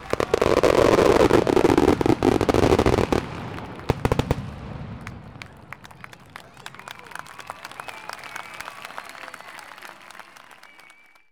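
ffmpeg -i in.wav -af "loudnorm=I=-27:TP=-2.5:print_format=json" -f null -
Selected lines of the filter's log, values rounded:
"input_i" : "-20.1",
"input_tp" : "-3.7",
"input_lra" : "19.8",
"input_thresh" : "-34.9",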